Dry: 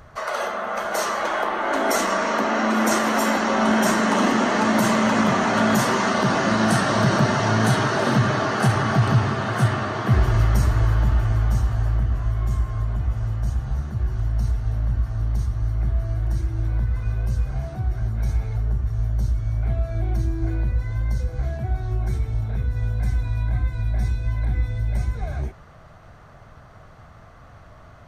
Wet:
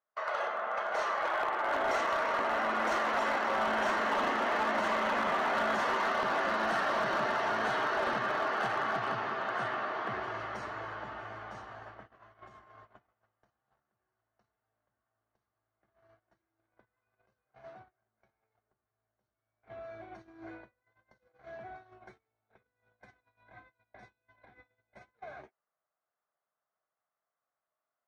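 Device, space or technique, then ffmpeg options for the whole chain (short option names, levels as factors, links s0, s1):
walkie-talkie: -filter_complex "[0:a]asettb=1/sr,asplit=3[s0][s1][s2];[s0]atrim=end=17.974[s3];[s1]atrim=start=17.97:end=18.52,asetpts=PTS-STARTPTS,afade=t=in:d=0.004:c=qsin,afade=t=out:st=0.546:d=0.004:c=qsin,lowpass=f=3100:p=1[s4];[s2]atrim=start=18.516[s5];[s3][s4]acrossfade=d=0.004:c1=hsin:c2=qsin[s6];[s6][s5]acrossfade=d=0.004:c1=qsin:c2=hsin,highpass=510,lowpass=2800,asoftclip=type=hard:threshold=0.119,agate=range=0.0224:threshold=0.01:ratio=16:detection=peak,volume=0.473"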